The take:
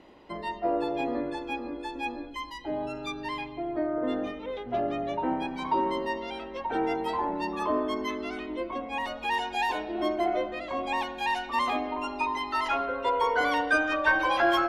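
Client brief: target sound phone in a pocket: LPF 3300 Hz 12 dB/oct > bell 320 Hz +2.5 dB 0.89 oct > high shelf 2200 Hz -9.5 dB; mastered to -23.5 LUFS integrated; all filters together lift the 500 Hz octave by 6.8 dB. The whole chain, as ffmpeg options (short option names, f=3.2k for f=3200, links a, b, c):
-af "lowpass=3.3k,equalizer=f=320:t=o:w=0.89:g=2.5,equalizer=f=500:t=o:g=8.5,highshelf=f=2.2k:g=-9.5,volume=3dB"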